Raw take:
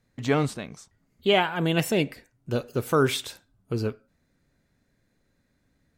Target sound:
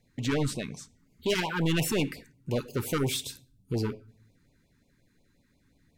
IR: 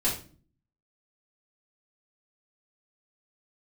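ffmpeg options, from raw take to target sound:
-filter_complex "[0:a]asettb=1/sr,asplit=3[a][b][c];[a]atrim=end=2.984[d];[b]atrim=start=2.98:end=3.74,asetpts=PTS-STARTPTS,afade=t=in:d=0.004:c=qsin,afade=t=out:st=0.756:d=0.004:c=qsin,equalizer=f=1.2k:w=0.5:g=-12.5[e];[c]atrim=start=3.736[f];[d][e]acrossfade=d=0.004:c1=hsin:c2=qsin[g];[g][f]acrossfade=d=0.004:c1=qsin:c2=hsin,asoftclip=type=tanh:threshold=-25.5dB,asplit=2[h][i];[1:a]atrim=start_sample=2205,asetrate=35280,aresample=44100[j];[i][j]afir=irnorm=-1:irlink=0,volume=-28dB[k];[h][k]amix=inputs=2:normalize=0,afftfilt=real='re*(1-between(b*sr/1024,560*pow(1600/560,0.5+0.5*sin(2*PI*5.6*pts/sr))/1.41,560*pow(1600/560,0.5+0.5*sin(2*PI*5.6*pts/sr))*1.41))':imag='im*(1-between(b*sr/1024,560*pow(1600/560,0.5+0.5*sin(2*PI*5.6*pts/sr))/1.41,560*pow(1600/560,0.5+0.5*sin(2*PI*5.6*pts/sr))*1.41))':win_size=1024:overlap=0.75,volume=2.5dB"

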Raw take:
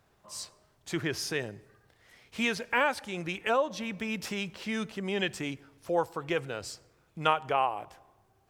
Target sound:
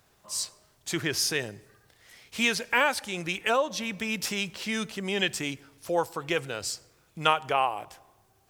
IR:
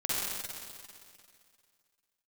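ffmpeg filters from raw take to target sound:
-af "highshelf=f=3k:g=10,volume=1dB"

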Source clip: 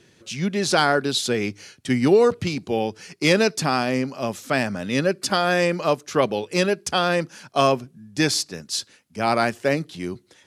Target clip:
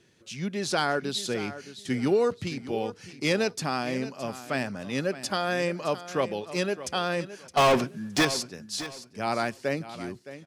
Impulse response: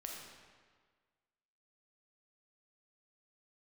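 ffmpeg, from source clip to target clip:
-filter_complex "[0:a]asettb=1/sr,asplit=3[a][b][c];[a]atrim=end=7.574[d];[b]atrim=start=7.57:end=8.25,asetpts=PTS-STARTPTS,afade=t=in:d=0.004:c=qsin,afade=t=out:st=0.676:d=0.004:c=qsin,asplit=2[e][f];[f]highpass=f=720:p=1,volume=33dB,asoftclip=type=tanh:threshold=-5.5dB[g];[e][g]amix=inputs=2:normalize=0,lowpass=f=3.2k:p=1,volume=-6dB[h];[c]atrim=start=8.246[i];[d][h]acrossfade=d=0.004:c1=hsin:c2=qsin[j];[j][i]acrossfade=d=0.004:c1=qsin:c2=hsin,aecho=1:1:616|1232|1848:0.2|0.0479|0.0115,volume=-7.5dB"

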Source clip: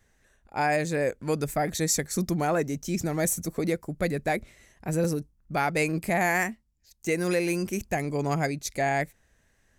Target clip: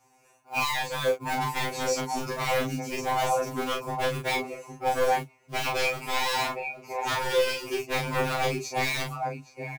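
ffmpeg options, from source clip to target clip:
-filter_complex "[0:a]highpass=f=330:p=1,acrossover=split=4300[a][b];[b]acompressor=threshold=-50dB:ratio=4:attack=1:release=60[c];[a][c]amix=inputs=2:normalize=0,superequalizer=9b=3.16:11b=0.316:12b=1.41:13b=0.316,acontrast=71,alimiter=limit=-12dB:level=0:latency=1:release=21,acrusher=bits=5:mode=log:mix=0:aa=0.000001,asplit=2[d][e];[e]adelay=816.3,volume=-7dB,highshelf=f=4k:g=-18.4[f];[d][f]amix=inputs=2:normalize=0,aeval=exprs='0.1*(abs(mod(val(0)/0.1+3,4)-2)-1)':c=same,asplit=2[g][h];[h]adelay=35,volume=-4dB[i];[g][i]amix=inputs=2:normalize=0,afftfilt=real='re*2.45*eq(mod(b,6),0)':imag='im*2.45*eq(mod(b,6),0)':win_size=2048:overlap=0.75"

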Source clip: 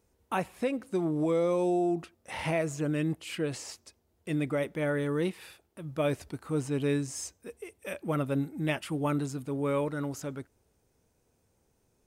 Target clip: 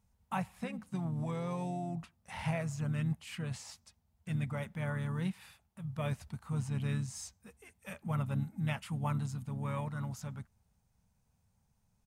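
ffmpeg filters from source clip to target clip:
-filter_complex "[0:a]asplit=3[a][b][c];[b]asetrate=33038,aresample=44100,atempo=1.33484,volume=-11dB[d];[c]asetrate=37084,aresample=44100,atempo=1.18921,volume=-15dB[e];[a][d][e]amix=inputs=3:normalize=0,firequalizer=gain_entry='entry(210,0);entry(300,-23);entry(810,-4);entry(1400,-7)':delay=0.05:min_phase=1"

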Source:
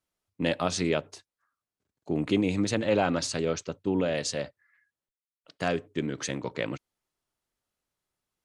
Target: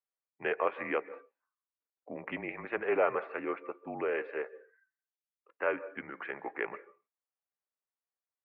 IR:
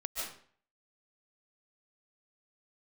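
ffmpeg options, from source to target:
-filter_complex "[0:a]asplit=2[a][b];[1:a]atrim=start_sample=2205,afade=t=out:st=0.37:d=0.01,atrim=end_sample=16758[c];[b][c]afir=irnorm=-1:irlink=0,volume=-17dB[d];[a][d]amix=inputs=2:normalize=0,highpass=f=590:t=q:w=0.5412,highpass=f=590:t=q:w=1.307,lowpass=f=2.4k:t=q:w=0.5176,lowpass=f=2.4k:t=q:w=0.7071,lowpass=f=2.4k:t=q:w=1.932,afreqshift=-130,afftdn=nr=13:nf=-55"

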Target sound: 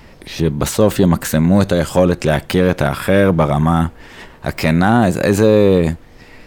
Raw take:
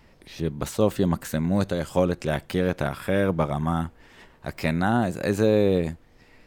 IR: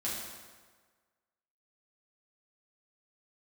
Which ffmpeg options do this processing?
-filter_complex "[0:a]asplit=2[a][b];[b]alimiter=limit=-18.5dB:level=0:latency=1:release=22,volume=3dB[c];[a][c]amix=inputs=2:normalize=0,asoftclip=type=tanh:threshold=-6dB,volume=6dB"

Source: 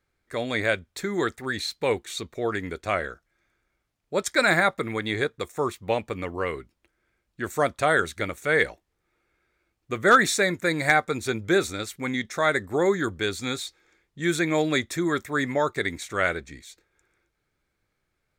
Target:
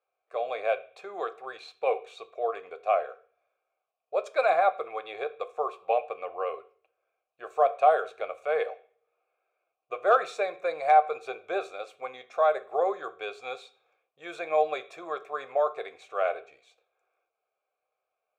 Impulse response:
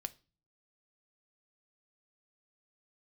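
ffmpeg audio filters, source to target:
-filter_complex "[0:a]asplit=3[a][b][c];[a]bandpass=f=730:t=q:w=8,volume=0dB[d];[b]bandpass=f=1.09k:t=q:w=8,volume=-6dB[e];[c]bandpass=f=2.44k:t=q:w=8,volume=-9dB[f];[d][e][f]amix=inputs=3:normalize=0,lowshelf=f=350:t=q:w=3:g=-9.5[g];[1:a]atrim=start_sample=2205,asetrate=30870,aresample=44100[h];[g][h]afir=irnorm=-1:irlink=0,volume=6dB"

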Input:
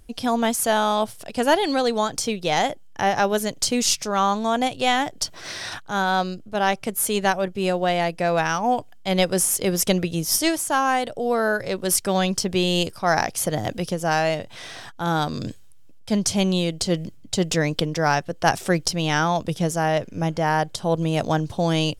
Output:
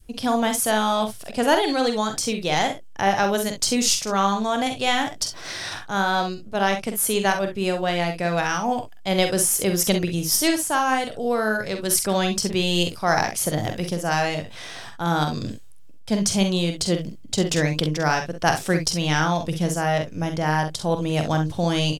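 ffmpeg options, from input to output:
-filter_complex "[0:a]asplit=2[a][b];[b]aecho=0:1:46|65:0.422|0.282[c];[a][c]amix=inputs=2:normalize=0,adynamicequalizer=threshold=0.0224:dfrequency=640:dqfactor=0.86:tfrequency=640:tqfactor=0.86:attack=5:release=100:ratio=0.375:range=2:mode=cutabove:tftype=bell"

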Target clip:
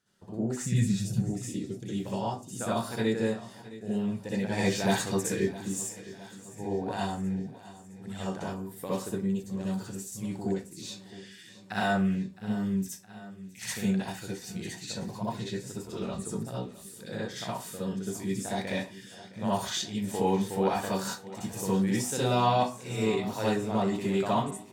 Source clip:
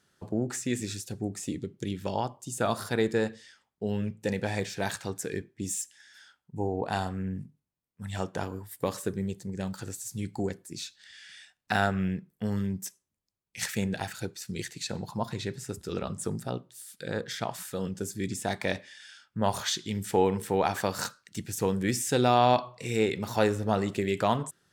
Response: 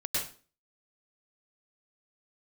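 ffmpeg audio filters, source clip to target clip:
-filter_complex "[0:a]asettb=1/sr,asplit=3[a][b][c];[a]atrim=end=0.634[d];[b]atrim=start=0.63:end=1.22,asetpts=PTS-STARTPTS,afade=t=in:d=0.004:c=qsin,afade=t=out:st=0.586:d=0.004:c=qsin,lowshelf=f=230:t=q:w=3:g=10[e];[c]atrim=start=1.216[f];[d][e]acrossfade=d=0.004:c1=hsin:c2=qsin[g];[g][f]acrossfade=d=0.004:c1=qsin:c2=hsin,asettb=1/sr,asplit=3[h][i][j];[h]atrim=end=4.524[k];[i]atrim=start=4.52:end=5.53,asetpts=PTS-STARTPTS,afade=t=in:d=0.004:c=qsin,afade=t=out:st=1.006:d=0.004:c=qsin,acontrast=80[l];[j]atrim=start=5.526[m];[k][l]acrossfade=d=0.004:c1=hsin:c2=qsin[n];[n][m]acrossfade=d=0.004:c1=qsin:c2=hsin,aecho=1:1:663|1326|1989|2652|3315:0.141|0.0819|0.0475|0.0276|0.016[o];[1:a]atrim=start_sample=2205,asetrate=74970,aresample=44100[p];[o][p]afir=irnorm=-1:irlink=0,volume=-3.5dB"

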